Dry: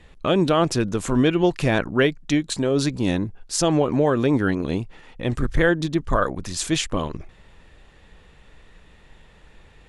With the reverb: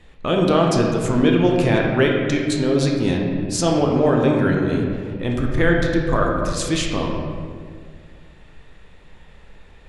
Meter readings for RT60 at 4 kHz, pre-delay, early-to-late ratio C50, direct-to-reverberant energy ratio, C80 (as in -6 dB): 1.2 s, 12 ms, 1.5 dB, -0.5 dB, 3.5 dB